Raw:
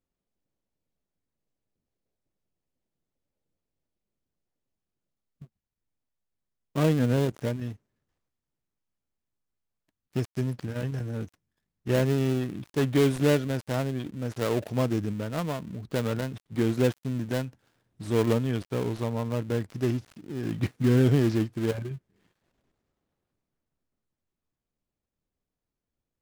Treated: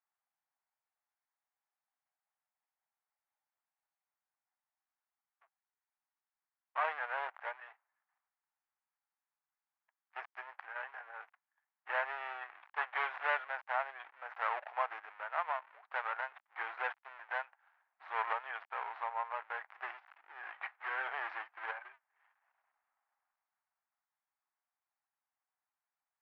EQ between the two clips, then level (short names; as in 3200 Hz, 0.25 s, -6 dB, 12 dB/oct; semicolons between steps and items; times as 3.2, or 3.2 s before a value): elliptic high-pass 790 Hz, stop band 70 dB; LPF 2000 Hz 24 dB/oct; +4.0 dB